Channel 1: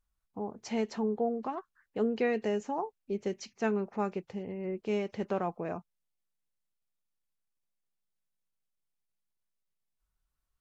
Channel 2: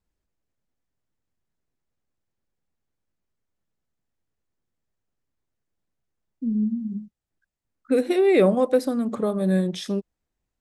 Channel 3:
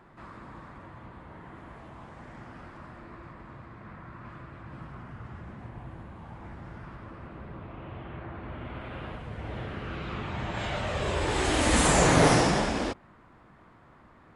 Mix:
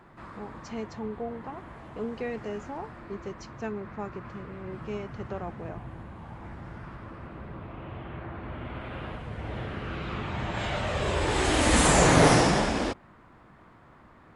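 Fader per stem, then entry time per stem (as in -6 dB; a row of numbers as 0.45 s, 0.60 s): -4.5 dB, mute, +1.5 dB; 0.00 s, mute, 0.00 s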